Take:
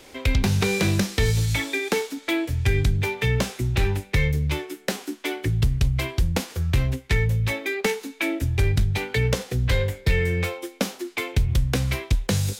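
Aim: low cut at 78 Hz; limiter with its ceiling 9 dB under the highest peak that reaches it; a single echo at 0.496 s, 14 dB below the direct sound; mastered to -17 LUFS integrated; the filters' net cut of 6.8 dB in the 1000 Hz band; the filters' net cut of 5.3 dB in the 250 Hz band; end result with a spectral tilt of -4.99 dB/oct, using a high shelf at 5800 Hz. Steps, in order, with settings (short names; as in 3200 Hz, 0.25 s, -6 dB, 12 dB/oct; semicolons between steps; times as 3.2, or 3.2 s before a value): HPF 78 Hz; bell 250 Hz -8 dB; bell 1000 Hz -8.5 dB; high shelf 5800 Hz -3 dB; limiter -21 dBFS; echo 0.496 s -14 dB; gain +13.5 dB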